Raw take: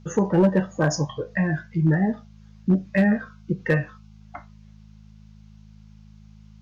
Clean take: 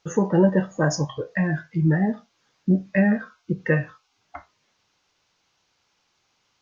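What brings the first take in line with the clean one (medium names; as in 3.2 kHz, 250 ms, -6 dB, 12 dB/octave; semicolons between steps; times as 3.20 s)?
clip repair -11.5 dBFS; de-hum 52.9 Hz, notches 4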